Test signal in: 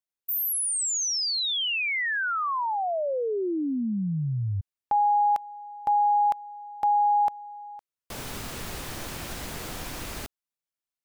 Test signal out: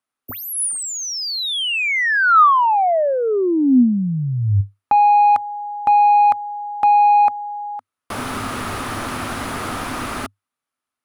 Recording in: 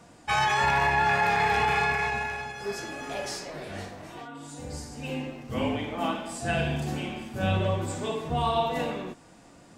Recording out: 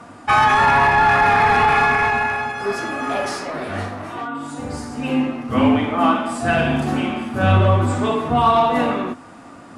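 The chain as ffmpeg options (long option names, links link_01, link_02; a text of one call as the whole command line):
ffmpeg -i in.wav -filter_complex "[0:a]asplit=2[link_01][link_02];[link_02]highpass=frequency=720:poles=1,volume=14dB,asoftclip=type=tanh:threshold=-12.5dB[link_03];[link_01][link_03]amix=inputs=2:normalize=0,lowpass=frequency=1200:poles=1,volume=-6dB,equalizer=frequency=100:width_type=o:width=0.33:gain=11,equalizer=frequency=250:width_type=o:width=0.33:gain=10,equalizer=frequency=500:width_type=o:width=0.33:gain=-3,equalizer=frequency=1250:width_type=o:width=0.33:gain=8,equalizer=frequency=10000:width_type=o:width=0.33:gain=11,volume=7dB" out.wav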